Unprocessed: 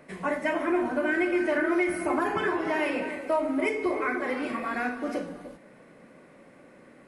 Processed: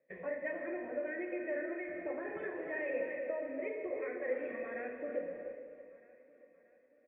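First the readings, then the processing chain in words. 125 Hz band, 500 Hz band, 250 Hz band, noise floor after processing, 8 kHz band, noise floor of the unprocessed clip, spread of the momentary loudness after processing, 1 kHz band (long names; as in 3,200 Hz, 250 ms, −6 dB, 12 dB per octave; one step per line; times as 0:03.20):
below −15 dB, −8.5 dB, −15.5 dB, −67 dBFS, below −30 dB, −54 dBFS, 8 LU, −20.0 dB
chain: noise gate −43 dBFS, range −20 dB
downward compressor 2 to 1, threshold −34 dBFS, peak gain reduction 7.5 dB
formant resonators in series e
on a send: repeating echo 630 ms, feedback 51%, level −18.5 dB
on the sum: reverb whose tail is shaped and stops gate 480 ms flat, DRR 7.5 dB
level +5 dB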